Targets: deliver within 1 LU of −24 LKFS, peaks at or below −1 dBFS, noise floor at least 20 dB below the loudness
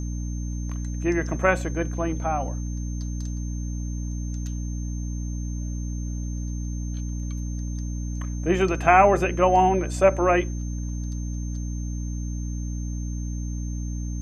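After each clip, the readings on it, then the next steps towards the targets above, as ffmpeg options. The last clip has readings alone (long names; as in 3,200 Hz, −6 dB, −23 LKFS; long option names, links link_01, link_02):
mains hum 60 Hz; hum harmonics up to 300 Hz; level of the hum −27 dBFS; interfering tone 6,300 Hz; level of the tone −44 dBFS; integrated loudness −26.0 LKFS; sample peak −2.5 dBFS; target loudness −24.0 LKFS
→ -af "bandreject=frequency=60:width_type=h:width=6,bandreject=frequency=120:width_type=h:width=6,bandreject=frequency=180:width_type=h:width=6,bandreject=frequency=240:width_type=h:width=6,bandreject=frequency=300:width_type=h:width=6"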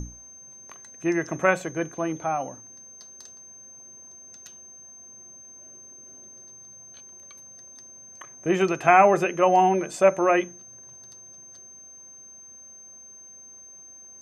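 mains hum none found; interfering tone 6,300 Hz; level of the tone −44 dBFS
→ -af "bandreject=frequency=6300:width=30"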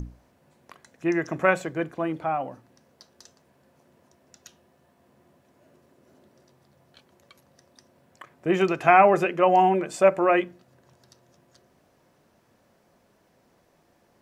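interfering tone none found; integrated loudness −22.0 LKFS; sample peak −2.5 dBFS; target loudness −24.0 LKFS
→ -af "volume=-2dB"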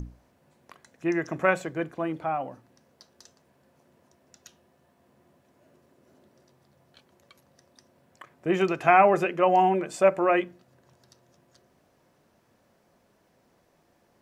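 integrated loudness −24.0 LKFS; sample peak −4.5 dBFS; background noise floor −66 dBFS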